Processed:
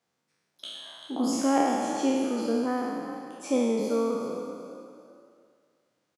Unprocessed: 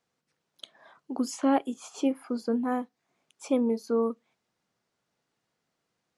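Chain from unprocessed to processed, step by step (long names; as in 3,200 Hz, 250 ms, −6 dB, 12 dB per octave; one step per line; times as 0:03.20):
peak hold with a decay on every bin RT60 1.98 s
high-pass filter 76 Hz
on a send: echo with shifted repeats 390 ms, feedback 31%, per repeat +38 Hz, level −12 dB
on the sum: level −1.5 dB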